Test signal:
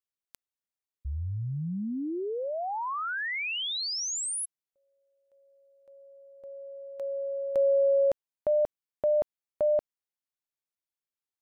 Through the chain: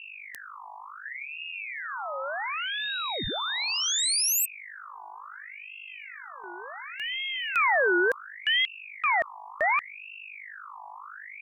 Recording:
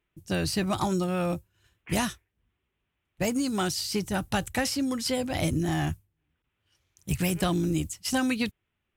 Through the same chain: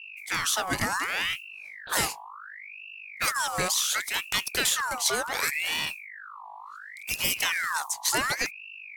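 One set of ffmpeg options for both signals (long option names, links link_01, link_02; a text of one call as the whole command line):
ffmpeg -i in.wav -af "bass=frequency=250:gain=-8,treble=frequency=4000:gain=7,aeval=exprs='val(0)+0.00708*(sin(2*PI*50*n/s)+sin(2*PI*2*50*n/s)/2+sin(2*PI*3*50*n/s)/3+sin(2*PI*4*50*n/s)/4+sin(2*PI*5*50*n/s)/5)':channel_layout=same,aeval=exprs='val(0)*sin(2*PI*1800*n/s+1800*0.5/0.69*sin(2*PI*0.69*n/s))':channel_layout=same,volume=3.5dB" out.wav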